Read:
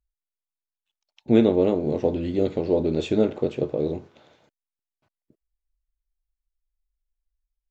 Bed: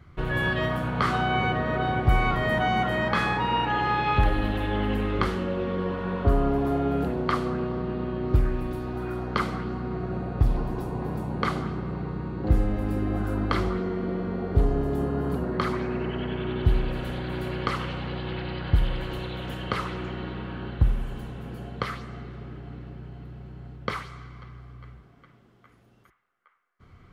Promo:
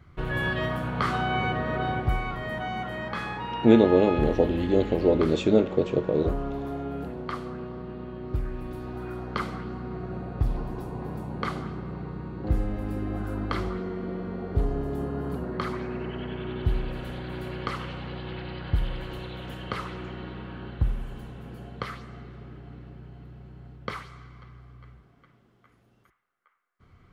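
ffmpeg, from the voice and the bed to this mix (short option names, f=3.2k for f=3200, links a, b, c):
-filter_complex "[0:a]adelay=2350,volume=0.5dB[a];[1:a]volume=2dB,afade=t=out:st=1.91:d=0.33:silence=0.501187,afade=t=in:st=8.43:d=0.42:silence=0.630957[b];[a][b]amix=inputs=2:normalize=0"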